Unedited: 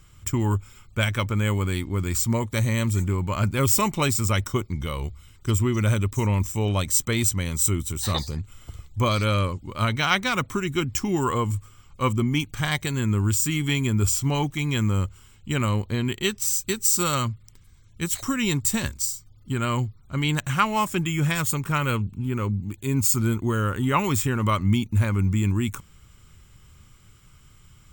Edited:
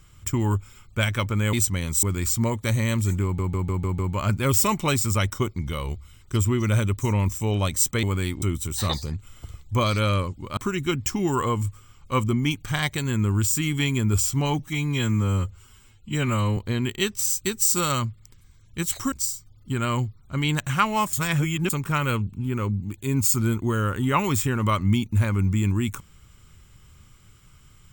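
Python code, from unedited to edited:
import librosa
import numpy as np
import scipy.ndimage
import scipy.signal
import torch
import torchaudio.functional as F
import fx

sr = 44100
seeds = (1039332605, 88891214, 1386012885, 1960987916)

y = fx.edit(x, sr, fx.swap(start_s=1.53, length_s=0.39, other_s=7.17, other_length_s=0.5),
    fx.stutter(start_s=3.13, slice_s=0.15, count=6),
    fx.cut(start_s=9.82, length_s=0.64),
    fx.stretch_span(start_s=14.48, length_s=1.32, factor=1.5),
    fx.cut(start_s=18.35, length_s=0.57),
    fx.reverse_span(start_s=20.93, length_s=0.57), tone=tone)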